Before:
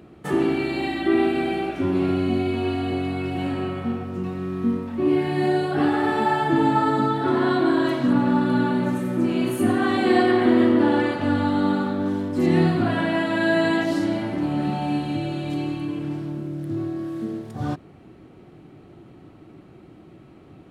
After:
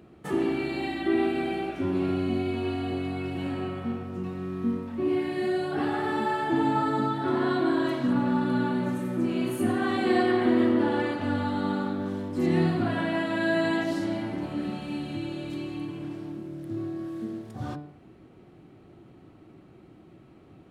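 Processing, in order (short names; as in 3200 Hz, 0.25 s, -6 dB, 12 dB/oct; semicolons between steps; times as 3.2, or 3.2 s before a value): de-hum 147.5 Hz, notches 35; gain -5 dB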